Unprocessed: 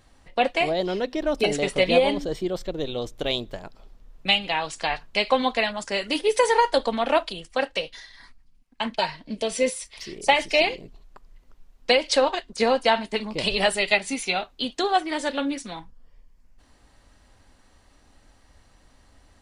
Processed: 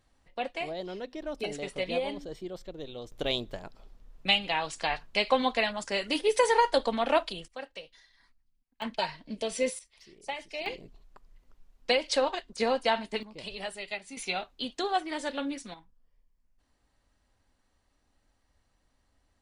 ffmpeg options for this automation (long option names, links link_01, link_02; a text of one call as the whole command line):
ffmpeg -i in.wav -af "asetnsamples=nb_out_samples=441:pad=0,asendcmd='3.12 volume volume -4dB;7.48 volume volume -16dB;8.82 volume volume -6dB;9.79 volume volume -17.5dB;10.66 volume volume -6.5dB;13.23 volume volume -16dB;14.17 volume volume -7dB;15.74 volume volume -15.5dB',volume=-12dB" out.wav